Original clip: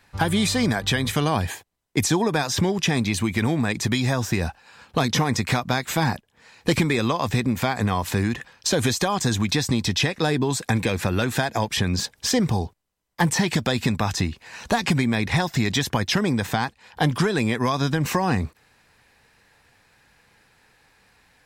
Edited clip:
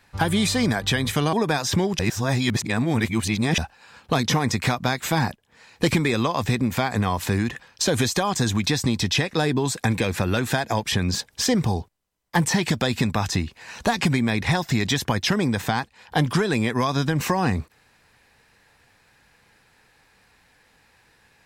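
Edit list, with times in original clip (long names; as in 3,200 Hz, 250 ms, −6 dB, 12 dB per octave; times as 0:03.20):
0:01.33–0:02.18: remove
0:02.84–0:04.43: reverse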